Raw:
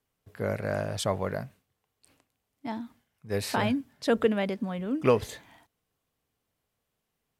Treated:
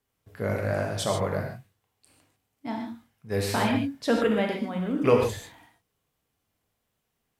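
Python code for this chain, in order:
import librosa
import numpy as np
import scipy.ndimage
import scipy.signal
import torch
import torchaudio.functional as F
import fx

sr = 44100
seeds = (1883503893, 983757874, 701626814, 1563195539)

y = fx.rev_gated(x, sr, seeds[0], gate_ms=170, shape='flat', drr_db=0.5)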